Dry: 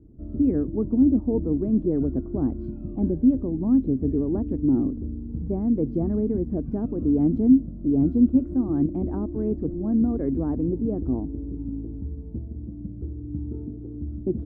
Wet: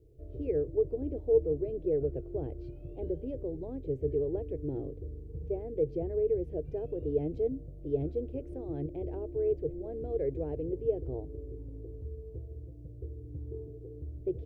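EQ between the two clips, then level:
drawn EQ curve 150 Hz 0 dB, 210 Hz −26 dB, 450 Hz +12 dB, 1,200 Hz −11 dB, 2,400 Hz +14 dB
−8.0 dB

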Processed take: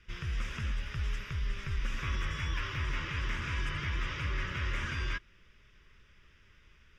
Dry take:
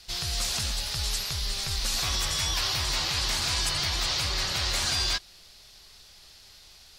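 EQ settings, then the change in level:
high-frequency loss of the air 250 metres
phaser with its sweep stopped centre 1,800 Hz, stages 4
0.0 dB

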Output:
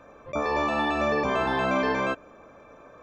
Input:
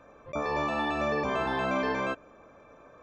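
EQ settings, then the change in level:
mains-hum notches 50/100/150 Hz
+4.0 dB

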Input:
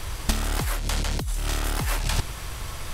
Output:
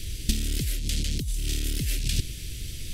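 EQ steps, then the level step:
Chebyshev band-stop filter 300–3,000 Hz, order 2
0.0 dB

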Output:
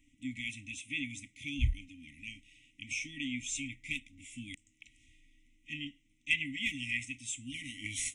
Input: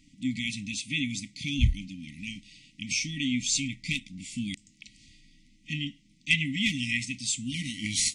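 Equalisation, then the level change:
phaser with its sweep stopped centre 930 Hz, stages 8
−4.5 dB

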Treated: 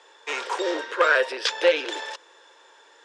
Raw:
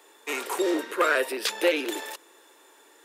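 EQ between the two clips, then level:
loudspeaker in its box 460–6,800 Hz, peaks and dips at 510 Hz +7 dB, 950 Hz +5 dB, 1,600 Hz +6 dB, 3,300 Hz +5 dB, 5,300 Hz +5 dB
0.0 dB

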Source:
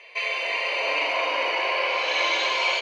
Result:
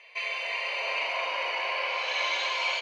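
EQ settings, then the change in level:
high-pass filter 570 Hz 12 dB per octave
−5.0 dB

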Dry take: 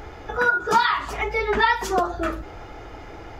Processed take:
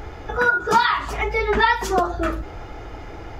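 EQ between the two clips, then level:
low-shelf EQ 180 Hz +4.5 dB
+1.5 dB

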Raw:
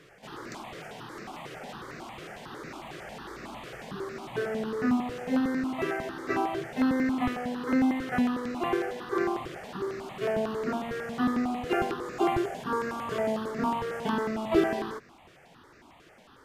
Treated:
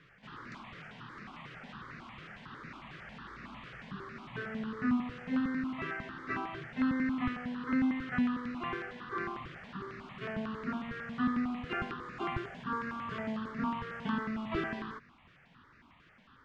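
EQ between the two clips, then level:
low-pass filter 3,000 Hz 12 dB per octave
flat-topped bell 520 Hz −11.5 dB
−2.5 dB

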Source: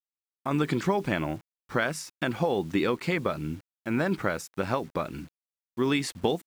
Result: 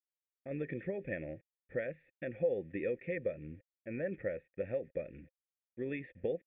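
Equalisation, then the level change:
formant resonators in series e
low-shelf EQ 110 Hz +11.5 dB
phaser with its sweep stopped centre 2,500 Hz, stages 4
+2.0 dB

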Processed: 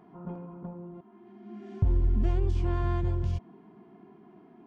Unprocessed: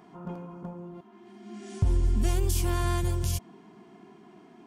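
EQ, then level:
head-to-tape spacing loss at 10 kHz 38 dB
0.0 dB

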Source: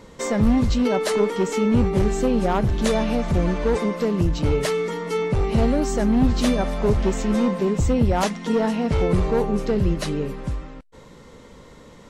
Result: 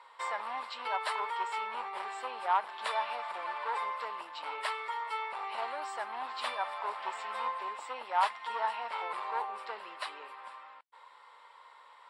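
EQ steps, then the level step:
moving average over 7 samples
four-pole ladder high-pass 840 Hz, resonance 60%
high-shelf EQ 2,200 Hz +9.5 dB
0.0 dB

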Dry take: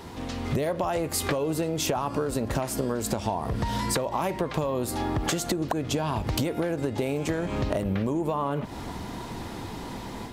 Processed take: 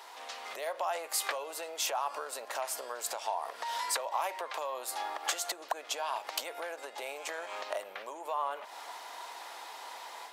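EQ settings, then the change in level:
high-pass filter 650 Hz 24 dB per octave
−3.0 dB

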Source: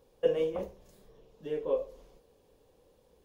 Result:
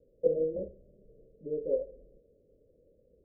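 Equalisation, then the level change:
Butterworth low-pass 630 Hz 96 dB per octave
0.0 dB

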